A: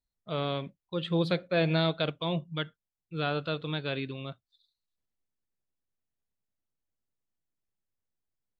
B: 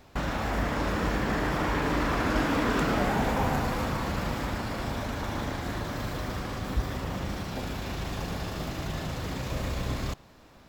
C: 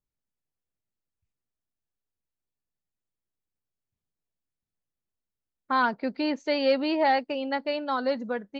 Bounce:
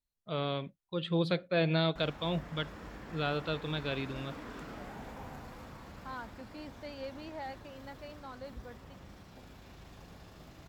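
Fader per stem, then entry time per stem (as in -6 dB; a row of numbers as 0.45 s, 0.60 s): -2.5 dB, -19.0 dB, -19.5 dB; 0.00 s, 1.80 s, 0.35 s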